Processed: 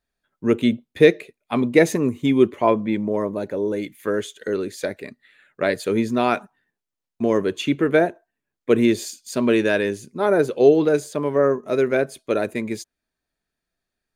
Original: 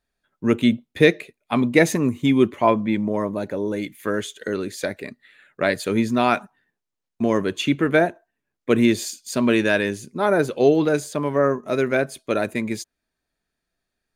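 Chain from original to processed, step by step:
dynamic equaliser 430 Hz, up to +6 dB, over −33 dBFS, Q 1.7
level −2.5 dB

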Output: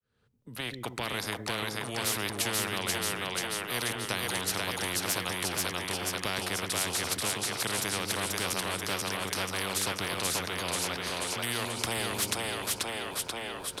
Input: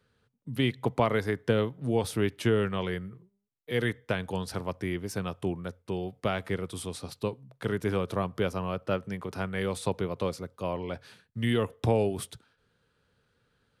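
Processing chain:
fade in at the beginning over 2.31 s
echo with a time of its own for lows and highs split 350 Hz, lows 128 ms, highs 485 ms, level −3 dB
every bin compressed towards the loudest bin 4 to 1

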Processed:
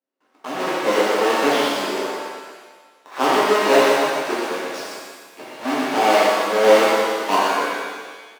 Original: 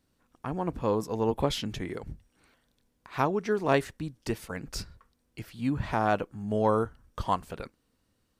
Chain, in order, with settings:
each half-wave held at its own peak
high-pass filter 330 Hz 24 dB per octave
noise gate with hold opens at −58 dBFS
low-pass filter 2,600 Hz 6 dB per octave
single-tap delay 120 ms −5 dB
reverb with rising layers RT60 1.4 s, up +7 semitones, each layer −8 dB, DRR −8 dB

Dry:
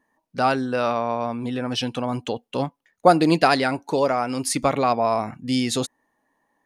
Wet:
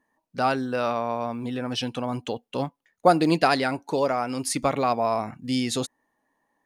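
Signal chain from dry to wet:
floating-point word with a short mantissa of 6 bits
level −3 dB

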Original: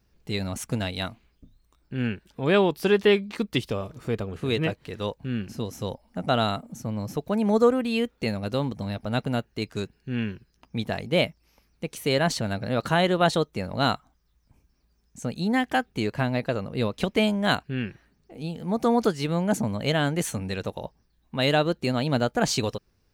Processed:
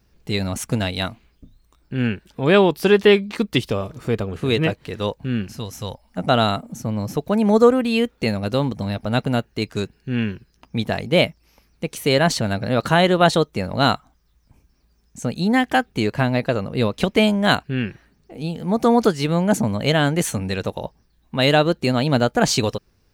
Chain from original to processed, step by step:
0:05.47–0:06.18: parametric band 320 Hz −9 dB 2.2 octaves
level +6 dB

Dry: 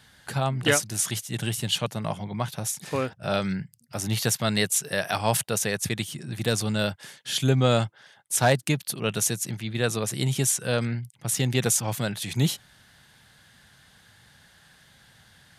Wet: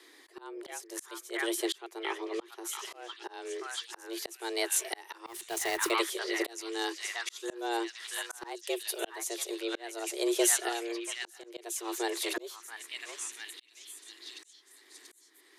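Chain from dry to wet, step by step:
0:06.52–0:07.50: graphic EQ with 15 bands 400 Hz −11 dB, 1,000 Hz +4 dB, 6,300 Hz +7 dB
frequency shifter +230 Hz
0:05.26–0:05.91: log-companded quantiser 4 bits
0:10.68–0:11.44: downward compressor 4 to 1, threshold −33 dBFS, peak gain reduction 11 dB
on a send: echo through a band-pass that steps 684 ms, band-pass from 1,500 Hz, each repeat 0.7 octaves, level −2 dB
on the sum: volume swells 702 ms
level −1.5 dB

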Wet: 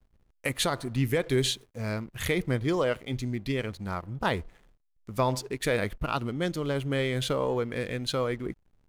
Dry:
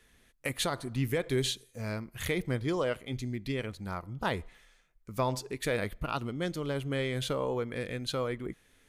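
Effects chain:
slack as between gear wheels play −51 dBFS
level +4 dB

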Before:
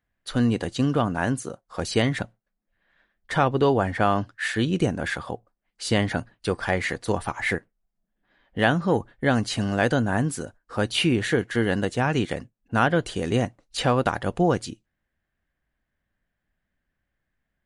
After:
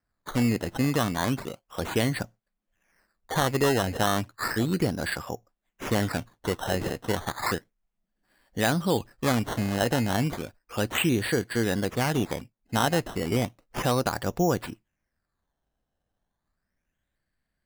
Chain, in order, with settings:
in parallel at −1 dB: brickwall limiter −14 dBFS, peak gain reduction 7.5 dB
on the sum: sample-and-hold swept by an LFO 13×, swing 100% 0.33 Hz
level −7.5 dB

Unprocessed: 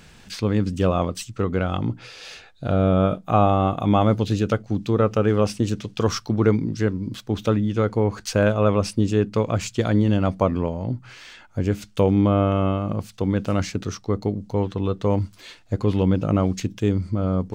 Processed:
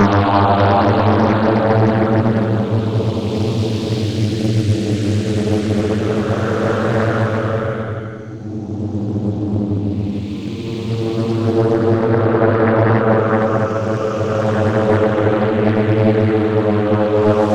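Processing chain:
extreme stretch with random phases 12×, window 0.25 s, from 0:03.95
highs frequency-modulated by the lows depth 0.84 ms
level +5 dB

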